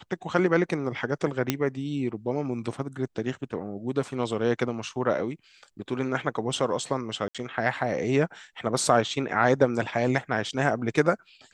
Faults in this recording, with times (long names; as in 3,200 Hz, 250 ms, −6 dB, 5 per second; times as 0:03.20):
0:01.50: click −7 dBFS
0:07.28–0:07.35: drop-out 66 ms